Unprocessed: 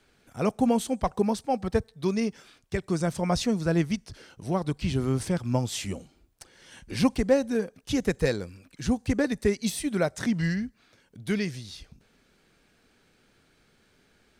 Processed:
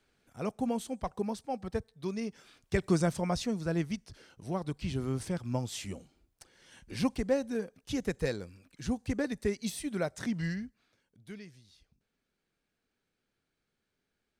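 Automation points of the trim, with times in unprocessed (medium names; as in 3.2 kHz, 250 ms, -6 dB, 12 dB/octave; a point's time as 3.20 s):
2.24 s -9 dB
2.86 s +2 dB
3.38 s -7 dB
10.51 s -7 dB
11.44 s -19.5 dB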